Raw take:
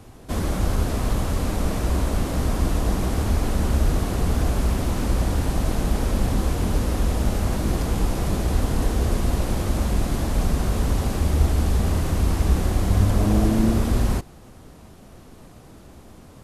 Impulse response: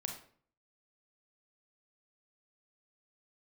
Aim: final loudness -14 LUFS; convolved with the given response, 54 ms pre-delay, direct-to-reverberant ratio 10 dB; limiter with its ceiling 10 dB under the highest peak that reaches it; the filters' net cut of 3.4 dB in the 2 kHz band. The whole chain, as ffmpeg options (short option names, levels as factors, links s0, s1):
-filter_complex "[0:a]equalizer=f=2000:t=o:g=-4.5,alimiter=limit=0.168:level=0:latency=1,asplit=2[s0][s1];[1:a]atrim=start_sample=2205,adelay=54[s2];[s1][s2]afir=irnorm=-1:irlink=0,volume=0.335[s3];[s0][s3]amix=inputs=2:normalize=0,volume=3.76"